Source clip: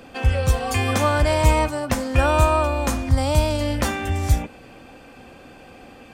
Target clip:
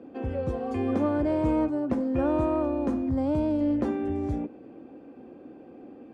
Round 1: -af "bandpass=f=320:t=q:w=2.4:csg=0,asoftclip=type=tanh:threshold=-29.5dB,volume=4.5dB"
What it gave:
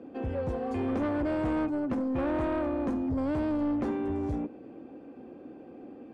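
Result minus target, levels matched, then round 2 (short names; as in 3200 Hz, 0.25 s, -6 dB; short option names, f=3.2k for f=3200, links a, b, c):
soft clip: distortion +15 dB
-af "bandpass=f=320:t=q:w=2.4:csg=0,asoftclip=type=tanh:threshold=-18dB,volume=4.5dB"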